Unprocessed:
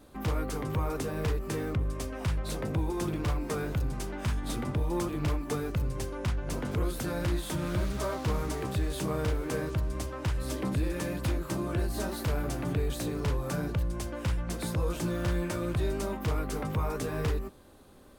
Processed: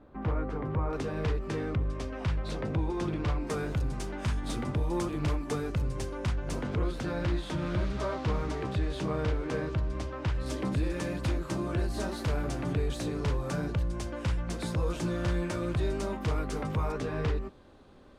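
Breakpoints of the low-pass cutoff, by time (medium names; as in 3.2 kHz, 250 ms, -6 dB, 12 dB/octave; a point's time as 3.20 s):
1.7 kHz
from 0.93 s 4.6 kHz
from 3.47 s 8.6 kHz
from 6.65 s 4.5 kHz
from 10.46 s 7.5 kHz
from 16.92 s 4.4 kHz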